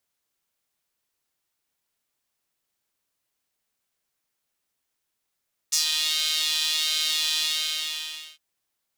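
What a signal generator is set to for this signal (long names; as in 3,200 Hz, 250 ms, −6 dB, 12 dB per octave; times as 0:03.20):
subtractive patch with pulse-width modulation D#4, sub −7 dB, filter highpass, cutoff 3,200 Hz, Q 2.9, filter envelope 1 octave, filter decay 0.15 s, filter sustain 20%, attack 13 ms, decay 0.12 s, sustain −6.5 dB, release 0.98 s, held 1.68 s, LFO 1.4 Hz, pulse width 39%, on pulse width 4%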